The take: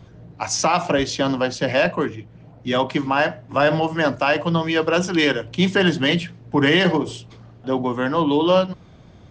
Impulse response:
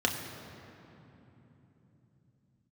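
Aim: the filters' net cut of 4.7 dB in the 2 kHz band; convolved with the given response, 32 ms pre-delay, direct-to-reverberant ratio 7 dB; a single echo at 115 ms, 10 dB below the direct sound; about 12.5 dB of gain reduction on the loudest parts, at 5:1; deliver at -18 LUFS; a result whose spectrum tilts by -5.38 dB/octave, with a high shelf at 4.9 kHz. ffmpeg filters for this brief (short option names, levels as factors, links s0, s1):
-filter_complex "[0:a]equalizer=f=2000:t=o:g=-5,highshelf=f=4900:g=-7.5,acompressor=threshold=0.0398:ratio=5,aecho=1:1:115:0.316,asplit=2[s0][s1];[1:a]atrim=start_sample=2205,adelay=32[s2];[s1][s2]afir=irnorm=-1:irlink=0,volume=0.141[s3];[s0][s3]amix=inputs=2:normalize=0,volume=3.98"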